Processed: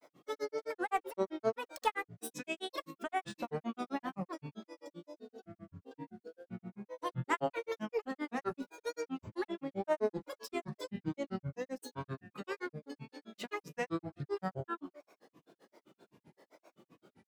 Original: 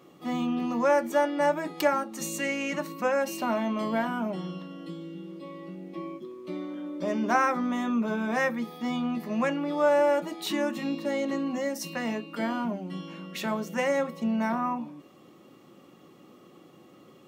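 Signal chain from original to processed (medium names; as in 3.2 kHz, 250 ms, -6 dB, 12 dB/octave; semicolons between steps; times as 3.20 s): Chebyshev shaper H 6 -33 dB, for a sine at -10.5 dBFS; granulator 100 ms, grains 7.7 per s, spray 22 ms, pitch spread up and down by 12 st; wow and flutter 19 cents; trim -5.5 dB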